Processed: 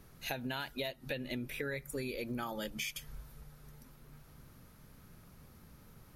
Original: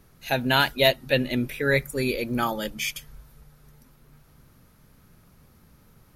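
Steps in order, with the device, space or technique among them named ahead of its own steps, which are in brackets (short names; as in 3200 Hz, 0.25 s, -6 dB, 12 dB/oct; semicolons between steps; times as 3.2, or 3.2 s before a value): serial compression, leveller first (compressor 2.5:1, threshold -25 dBFS, peak gain reduction 8 dB; compressor 5:1, threshold -35 dBFS, peak gain reduction 13 dB); gain -1.5 dB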